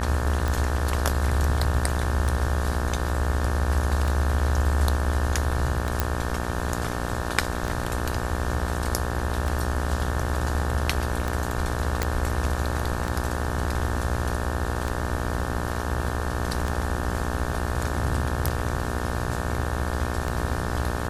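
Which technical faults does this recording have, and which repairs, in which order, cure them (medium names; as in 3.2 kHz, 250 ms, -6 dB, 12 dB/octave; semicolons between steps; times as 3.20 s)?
buzz 60 Hz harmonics 30 -30 dBFS
tick 33 1/3 rpm
6.00 s: pop
12.03 s: pop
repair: de-click; de-hum 60 Hz, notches 30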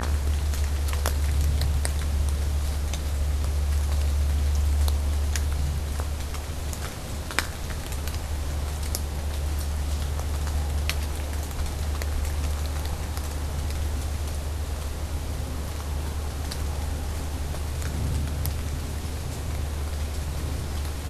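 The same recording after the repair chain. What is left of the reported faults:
nothing left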